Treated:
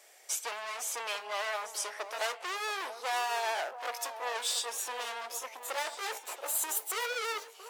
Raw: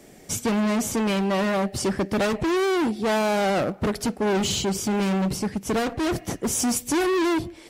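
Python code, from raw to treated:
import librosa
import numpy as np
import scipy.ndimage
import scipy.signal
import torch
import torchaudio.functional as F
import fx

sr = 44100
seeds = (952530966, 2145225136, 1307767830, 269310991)

y = fx.pitch_glide(x, sr, semitones=5.0, runs='starting unshifted')
y = 10.0 ** (-16.0 / 20.0) * np.tanh(y / 10.0 ** (-16.0 / 20.0))
y = scipy.signal.sosfilt(scipy.signal.bessel(6, 890.0, 'highpass', norm='mag', fs=sr, output='sos'), y)
y = fx.echo_alternate(y, sr, ms=679, hz=1200.0, feedback_pct=51, wet_db=-10)
y = y * librosa.db_to_amplitude(-3.5)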